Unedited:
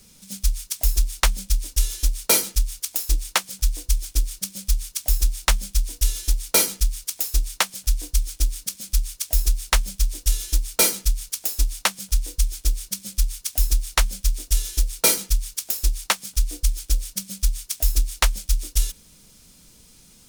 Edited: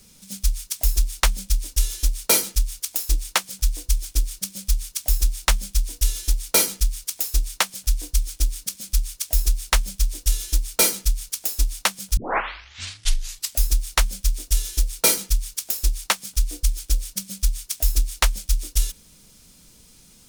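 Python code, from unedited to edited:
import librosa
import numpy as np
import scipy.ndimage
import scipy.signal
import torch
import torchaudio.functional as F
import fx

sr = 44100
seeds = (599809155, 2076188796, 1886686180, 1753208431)

y = fx.edit(x, sr, fx.tape_start(start_s=12.17, length_s=1.5), tone=tone)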